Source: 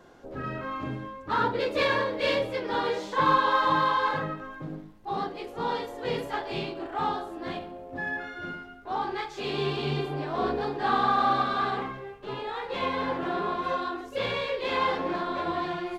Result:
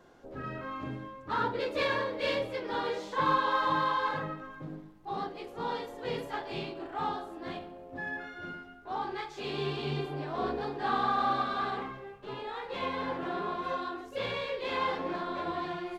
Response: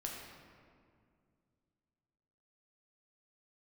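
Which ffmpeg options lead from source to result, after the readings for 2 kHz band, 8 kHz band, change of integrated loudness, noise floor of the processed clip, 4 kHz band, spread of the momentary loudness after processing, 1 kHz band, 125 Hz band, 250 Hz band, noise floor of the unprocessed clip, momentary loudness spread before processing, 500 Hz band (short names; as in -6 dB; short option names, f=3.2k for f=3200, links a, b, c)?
-5.0 dB, n/a, -5.0 dB, -49 dBFS, -5.0 dB, 14 LU, -5.0 dB, -4.5 dB, -4.5 dB, -45 dBFS, 14 LU, -5.0 dB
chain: -filter_complex "[0:a]asplit=2[a][b];[1:a]atrim=start_sample=2205[c];[b][c]afir=irnorm=-1:irlink=0,volume=-17.5dB[d];[a][d]amix=inputs=2:normalize=0,volume=-5.5dB"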